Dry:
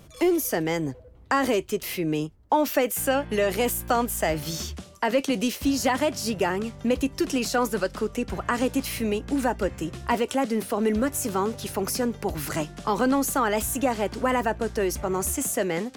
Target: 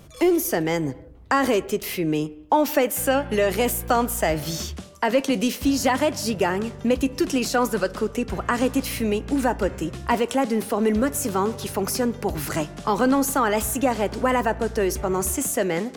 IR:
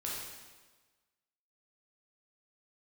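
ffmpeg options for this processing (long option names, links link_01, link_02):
-filter_complex "[0:a]asplit=2[link_01][link_02];[1:a]atrim=start_sample=2205,afade=type=out:start_time=0.34:duration=0.01,atrim=end_sample=15435,lowpass=2300[link_03];[link_02][link_03]afir=irnorm=-1:irlink=0,volume=-17dB[link_04];[link_01][link_04]amix=inputs=2:normalize=0,volume=2dB"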